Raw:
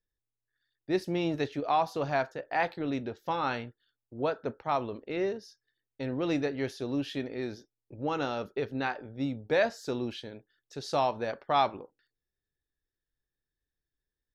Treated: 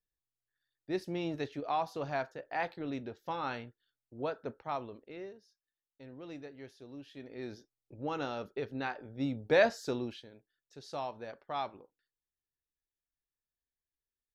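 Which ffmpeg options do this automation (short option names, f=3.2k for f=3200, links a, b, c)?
-af "volume=12dB,afade=t=out:st=4.57:d=0.75:silence=0.298538,afade=t=in:st=7.14:d=0.4:silence=0.266073,afade=t=in:st=8.97:d=0.72:silence=0.473151,afade=t=out:st=9.69:d=0.57:silence=0.237137"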